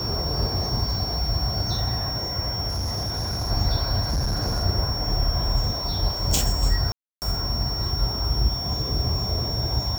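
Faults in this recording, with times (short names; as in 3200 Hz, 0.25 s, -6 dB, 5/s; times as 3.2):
tone 5500 Hz -28 dBFS
2.68–3.51 clipped -23.5 dBFS
4.02–4.64 clipped -20.5 dBFS
6.92–7.22 gap 0.299 s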